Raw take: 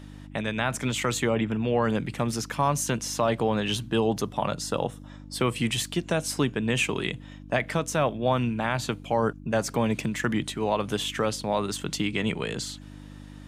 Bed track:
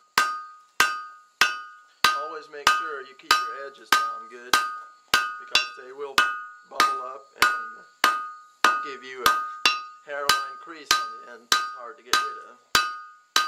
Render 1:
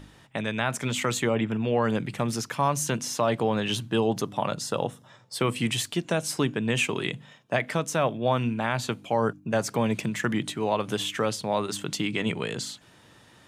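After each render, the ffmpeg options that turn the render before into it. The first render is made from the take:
-af "bandreject=f=50:t=h:w=4,bandreject=f=100:t=h:w=4,bandreject=f=150:t=h:w=4,bandreject=f=200:t=h:w=4,bandreject=f=250:t=h:w=4,bandreject=f=300:t=h:w=4"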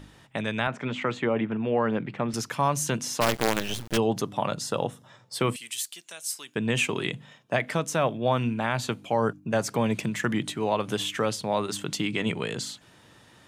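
-filter_complex "[0:a]asettb=1/sr,asplit=3[a][b][c];[a]atrim=end=0.674[d];[b]atrim=start=0.67:end=2.34,asetpts=PTS-STARTPTS,afade=t=in:d=0.004:c=qsin,afade=t=out:st=1.666:d=0.004:c=qsin,highpass=140,lowpass=2.4k[e];[c]atrim=start=2.336[f];[d][e]acrossfade=d=0.004:c1=hsin:c2=qsin[g];[g][f]acrossfade=d=0.004:c1=qsin:c2=hsin,asplit=3[h][i][j];[h]afade=t=out:st=3.2:d=0.02[k];[i]acrusher=bits=4:dc=4:mix=0:aa=0.000001,afade=t=in:st=3.2:d=0.02,afade=t=out:st=3.96:d=0.02[l];[j]afade=t=in:st=3.96:d=0.02[m];[k][l][m]amix=inputs=3:normalize=0,asettb=1/sr,asplit=3[n][o][p];[n]atrim=end=5.564[q];[o]atrim=start=5.56:end=6.56,asetpts=PTS-STARTPTS,afade=t=in:d=0.004:c=qsin,afade=t=out:st=0.996:d=0.004:c=qsin,aderivative[r];[p]atrim=start=6.556[s];[q][r]acrossfade=d=0.004:c1=hsin:c2=qsin[t];[t][s]acrossfade=d=0.004:c1=qsin:c2=hsin"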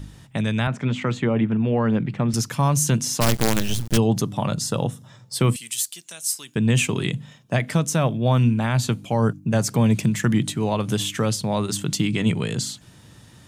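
-af "bass=f=250:g=13,treble=f=4k:g=8"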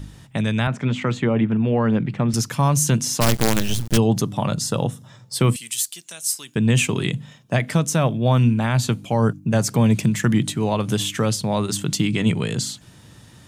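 -af "volume=1.5dB"

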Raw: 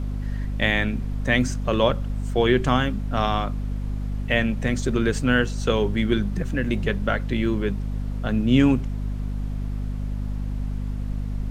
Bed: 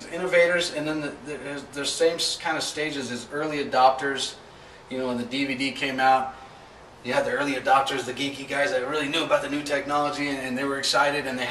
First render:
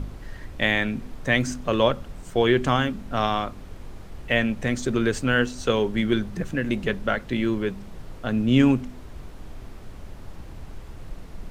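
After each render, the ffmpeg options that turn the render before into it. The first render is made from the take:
-af "bandreject=f=50:t=h:w=4,bandreject=f=100:t=h:w=4,bandreject=f=150:t=h:w=4,bandreject=f=200:t=h:w=4,bandreject=f=250:t=h:w=4"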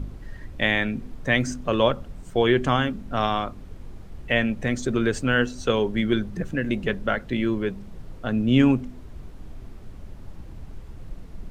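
-af "afftdn=nr=6:nf=-41"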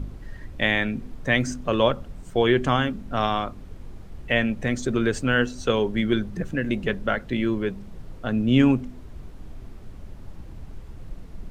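-af anull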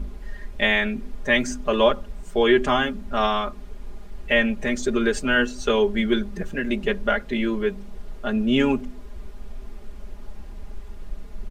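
-af "equalizer=f=150:w=1.5:g=-10.5,aecho=1:1:4.9:0.96"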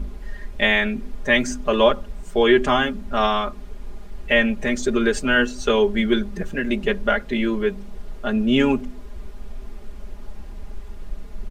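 -af "volume=2dB"

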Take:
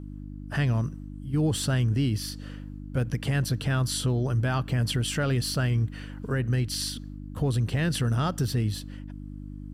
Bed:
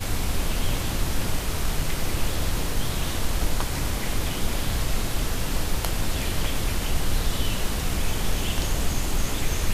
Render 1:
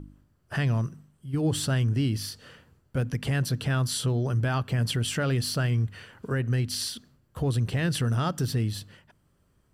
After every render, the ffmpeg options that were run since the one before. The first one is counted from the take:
-af "bandreject=f=50:t=h:w=4,bandreject=f=100:t=h:w=4,bandreject=f=150:t=h:w=4,bandreject=f=200:t=h:w=4,bandreject=f=250:t=h:w=4,bandreject=f=300:t=h:w=4"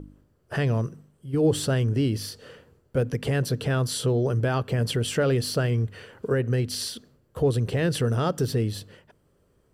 -af "equalizer=f=460:t=o:w=0.87:g=11"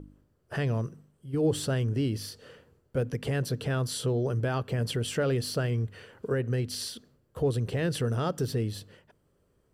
-af "volume=-4.5dB"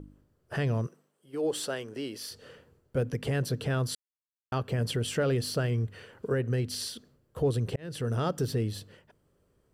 -filter_complex "[0:a]asettb=1/sr,asplit=3[a][b][c];[a]atrim=end=0.874[d];[b]atrim=start=0.87:end=2.31,asetpts=PTS-STARTPTS,afade=t=in:d=0.004:c=qsin,afade=t=out:st=1.436:d=0.004:c=qsin,highpass=410[e];[c]atrim=start=2.306[f];[d][e]acrossfade=d=0.004:c1=hsin:c2=qsin[g];[g][f]acrossfade=d=0.004:c1=qsin:c2=hsin,asplit=4[h][i][j][k];[h]atrim=end=3.95,asetpts=PTS-STARTPTS,afade=t=out:st=3.946:d=0.004:c=hsin[l];[i]atrim=start=3.95:end=4.52,asetpts=PTS-STARTPTS,volume=0[m];[j]atrim=start=4.52:end=7.76,asetpts=PTS-STARTPTS,afade=t=in:d=0.004:c=hsin,afade=t=out:st=3.236:d=0.004:c=hsin[n];[k]atrim=start=7.76,asetpts=PTS-STARTPTS,afade=t=in:d=0.4[o];[l][m][n][o]concat=n=4:v=0:a=1"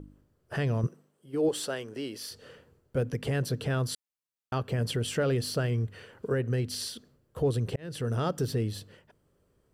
-filter_complex "[0:a]asettb=1/sr,asplit=3[a][b][c];[a]atrim=end=0.834[d];[b]atrim=start=0.83:end=1.49,asetpts=PTS-STARTPTS,afade=t=in:d=0.004:c=qsin,afade=t=out:st=0.656:d=0.004:c=qsin,lowshelf=f=340:g=9[e];[c]atrim=start=1.486[f];[d][e]acrossfade=d=0.004:c1=hsin:c2=qsin[g];[g][f]acrossfade=d=0.004:c1=qsin:c2=hsin"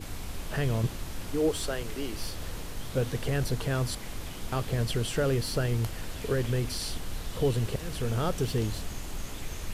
-filter_complex "[1:a]volume=-12dB[a];[0:a][a]amix=inputs=2:normalize=0"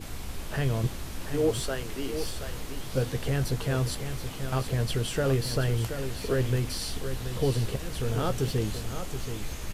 -filter_complex "[0:a]asplit=2[a][b];[b]adelay=15,volume=-10.5dB[c];[a][c]amix=inputs=2:normalize=0,aecho=1:1:727:0.355"

